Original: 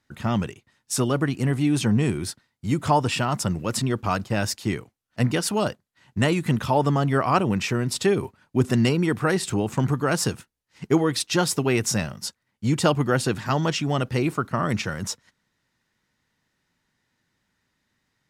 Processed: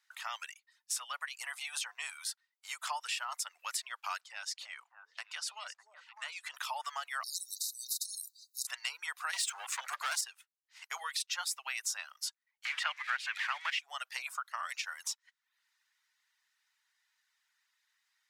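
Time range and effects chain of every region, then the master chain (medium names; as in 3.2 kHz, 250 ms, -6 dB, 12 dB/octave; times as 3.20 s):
4.21–6.54 s: low-pass 7.5 kHz + compression 3:1, threshold -30 dBFS + repeats whose band climbs or falls 301 ms, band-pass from 410 Hz, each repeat 1.4 oct, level -5 dB
7.23–8.67 s: brick-wall FIR band-stop 190–3700 Hz + spectrum-flattening compressor 10:1
9.33–10.21 s: Chebyshev low-pass 9.6 kHz + hum notches 50/100/150/200/250/300 Hz + waveshaping leveller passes 3
12.65–13.79 s: zero-crossing glitches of -14.5 dBFS + low-pass 2.8 kHz + peaking EQ 2 kHz +14 dB 1.3 oct
whole clip: Bessel high-pass 1.5 kHz, order 8; reverb removal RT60 0.5 s; compression 2.5:1, threshold -37 dBFS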